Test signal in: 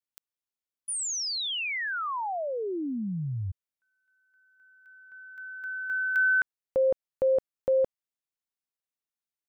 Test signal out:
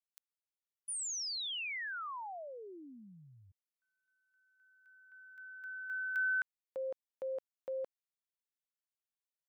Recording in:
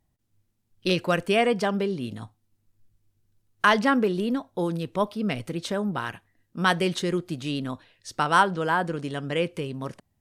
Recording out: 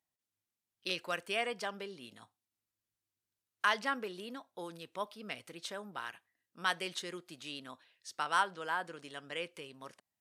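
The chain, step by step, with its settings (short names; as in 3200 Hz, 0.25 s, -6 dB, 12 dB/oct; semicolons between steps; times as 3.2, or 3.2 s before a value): HPF 1200 Hz 6 dB/oct; gain -7.5 dB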